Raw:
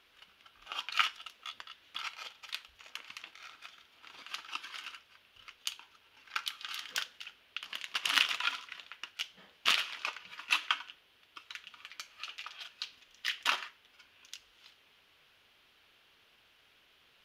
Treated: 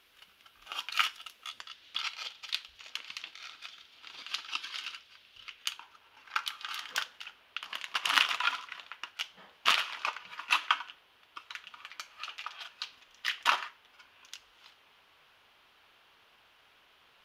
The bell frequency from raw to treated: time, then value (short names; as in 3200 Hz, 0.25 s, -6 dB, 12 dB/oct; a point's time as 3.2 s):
bell +8 dB 1.4 oct
1.33 s 14000 Hz
1.84 s 4200 Hz
5.42 s 4200 Hz
5.82 s 960 Hz